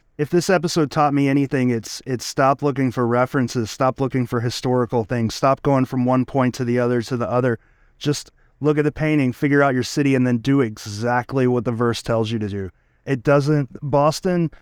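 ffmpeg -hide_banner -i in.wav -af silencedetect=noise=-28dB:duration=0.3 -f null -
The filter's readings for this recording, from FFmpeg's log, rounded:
silence_start: 7.55
silence_end: 8.02 | silence_duration: 0.47
silence_start: 8.22
silence_end: 8.62 | silence_duration: 0.40
silence_start: 12.68
silence_end: 13.08 | silence_duration: 0.40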